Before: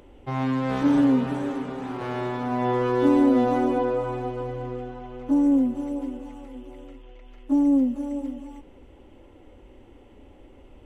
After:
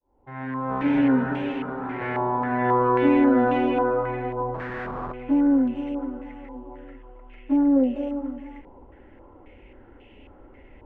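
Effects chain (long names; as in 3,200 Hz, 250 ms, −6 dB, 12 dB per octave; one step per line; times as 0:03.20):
fade in at the beginning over 1.16 s
notch filter 1,200 Hz, Q 9.3
0:04.54–0:05.12: comparator with hysteresis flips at −43 dBFS
0:07.76–0:08.09: gain on a spectral selection 330–790 Hz +10 dB
low-pass on a step sequencer 3.7 Hz 990–2,700 Hz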